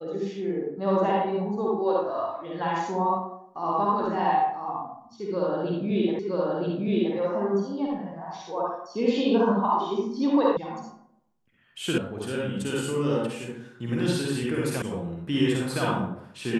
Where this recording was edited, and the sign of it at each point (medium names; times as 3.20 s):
6.19 s: repeat of the last 0.97 s
10.57 s: sound stops dead
11.98 s: sound stops dead
14.82 s: sound stops dead